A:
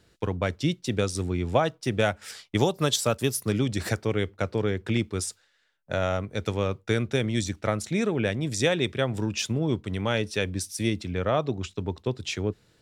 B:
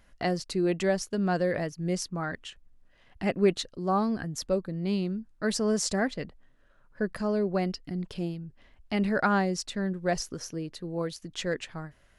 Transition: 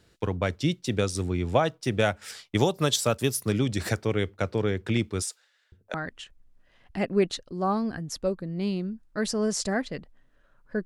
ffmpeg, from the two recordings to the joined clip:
ffmpeg -i cue0.wav -i cue1.wav -filter_complex "[0:a]asettb=1/sr,asplit=3[link_01][link_02][link_03];[link_01]atrim=end=5.224[link_04];[link_02]atrim=start=5.22:end=5.94,asetpts=PTS-STARTPTS,afade=type=in:duration=0.004:curve=qsin,afade=type=out:start_time=0.716:duration=0.004:curve=qsin,acrossover=split=400[link_05][link_06];[link_05]adelay=500[link_07];[link_07][link_06]amix=inputs=2:normalize=0,atrim=end_sample=31752[link_08];[link_03]atrim=start=5.936[link_09];[link_04][link_08]acrossfade=duration=0.004:curve1=hsin:curve2=qsin[link_10];[link_10][link_09]acrossfade=duration=0.004:curve1=qsin:curve2=hsin,apad=whole_dur=10.85,atrim=end=10.85,atrim=end=5.942[link_11];[1:a]atrim=start=2.198:end=7.11[link_12];[link_11][link_12]acrossfade=duration=0.004:curve1=hsin:curve2=hsin" out.wav

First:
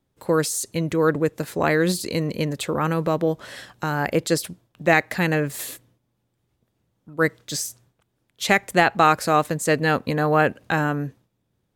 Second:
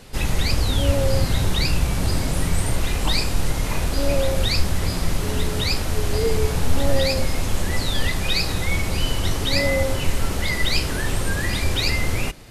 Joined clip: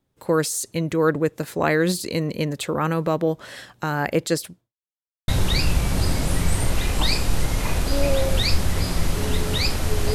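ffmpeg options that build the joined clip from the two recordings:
ffmpeg -i cue0.wav -i cue1.wav -filter_complex "[0:a]apad=whole_dur=10.14,atrim=end=10.14,asplit=2[link_01][link_02];[link_01]atrim=end=4.73,asetpts=PTS-STARTPTS,afade=type=out:start_time=4.14:duration=0.59:curve=qsin[link_03];[link_02]atrim=start=4.73:end=5.28,asetpts=PTS-STARTPTS,volume=0[link_04];[1:a]atrim=start=1.34:end=6.2,asetpts=PTS-STARTPTS,afade=type=in:duration=0.004:curve=hsin[link_05];[link_03][link_04][link_05]concat=n=3:v=0:a=1" out.wav

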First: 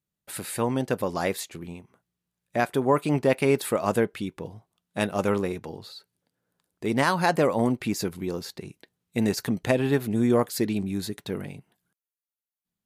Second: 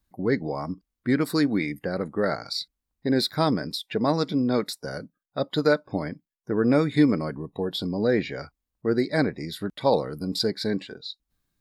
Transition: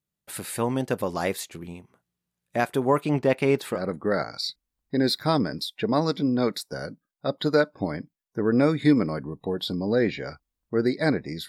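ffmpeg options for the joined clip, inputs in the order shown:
ffmpeg -i cue0.wav -i cue1.wav -filter_complex "[0:a]asettb=1/sr,asplit=3[link_01][link_02][link_03];[link_01]atrim=end=3.004[link_04];[link_02]atrim=start=3:end=3.85,asetpts=PTS-STARTPTS,afade=type=in:duration=0.004:curve=qsin,afade=type=out:start_time=0.846:duration=0.004:curve=qsin,equalizer=frequency=11000:width_type=o:width=1.1:gain=-10.5[link_05];[link_03]atrim=start=3.846[link_06];[link_04][link_05]acrossfade=duration=0.004:curve1=hsin:curve2=qsin[link_07];[link_07][link_06]acrossfade=duration=0.004:curve1=qsin:curve2=hsin,apad=whole_dur=11.48,atrim=end=11.48,atrim=end=3.85,asetpts=PTS-STARTPTS[link_08];[1:a]atrim=start=1.81:end=9.6,asetpts=PTS-STARTPTS[link_09];[link_08][link_09]acrossfade=duration=0.16:curve1=tri:curve2=tri" out.wav

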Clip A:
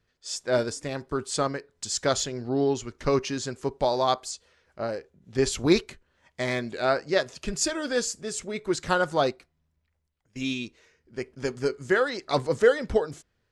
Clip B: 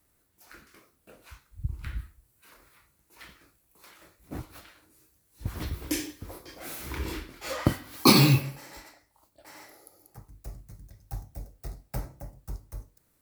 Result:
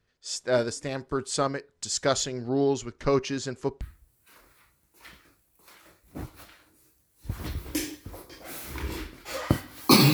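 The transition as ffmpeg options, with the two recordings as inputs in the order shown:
ffmpeg -i cue0.wav -i cue1.wav -filter_complex "[0:a]asettb=1/sr,asplit=3[link_01][link_02][link_03];[link_01]atrim=end=2.854[link_04];[link_02]atrim=start=2.85:end=3.81,asetpts=PTS-STARTPTS,afade=type=in:duration=0.004:curve=qsin,afade=type=out:start_time=0.956:duration=0.004:curve=qsin,highshelf=frequency=6400:gain=-5[link_05];[link_03]atrim=start=3.806[link_06];[link_04][link_05]acrossfade=duration=0.004:curve1=hsin:curve2=qsin[link_07];[link_07][link_06]acrossfade=duration=0.004:curve1=qsin:curve2=hsin,apad=whole_dur=10.13,atrim=end=10.13,atrim=end=3.812[link_08];[1:a]atrim=start=1.968:end=8.29[link_09];[link_08][link_09]acrossfade=duration=0.004:curve1=hsin:curve2=hsin" out.wav

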